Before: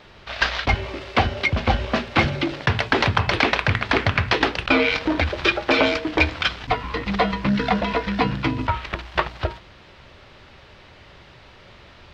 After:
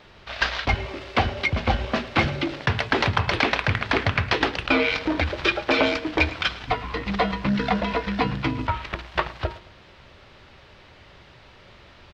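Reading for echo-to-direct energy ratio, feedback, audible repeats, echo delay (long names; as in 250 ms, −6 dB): −18.5 dB, 38%, 2, 109 ms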